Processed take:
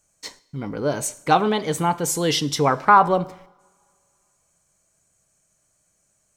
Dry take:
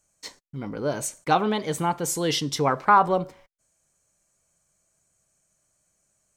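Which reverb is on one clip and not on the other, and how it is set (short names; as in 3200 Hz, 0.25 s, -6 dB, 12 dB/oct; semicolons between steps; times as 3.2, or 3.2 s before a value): two-slope reverb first 0.82 s, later 2.5 s, from -21 dB, DRR 17.5 dB; gain +3.5 dB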